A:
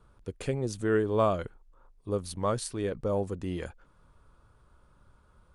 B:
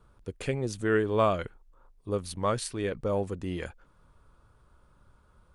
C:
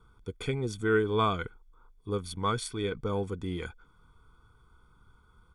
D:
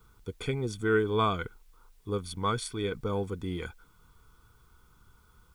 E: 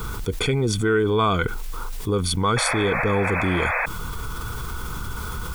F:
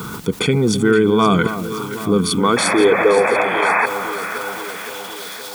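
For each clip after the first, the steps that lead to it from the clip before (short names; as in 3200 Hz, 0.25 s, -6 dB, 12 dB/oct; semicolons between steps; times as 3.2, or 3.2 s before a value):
dynamic EQ 2300 Hz, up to +7 dB, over -49 dBFS, Q 1
comb 0.9 ms, depth 96%; small resonant body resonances 480/1500/3400 Hz, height 12 dB, ringing for 25 ms; gain -5.5 dB
added noise white -72 dBFS
painted sound noise, 2.56–3.86, 470–2600 Hz -39 dBFS; fast leveller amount 70%; gain +4 dB
high-pass sweep 180 Hz -> 3900 Hz, 2.11–5.39; echo with dull and thin repeats by turns 0.26 s, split 1200 Hz, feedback 80%, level -10 dB; gain +4 dB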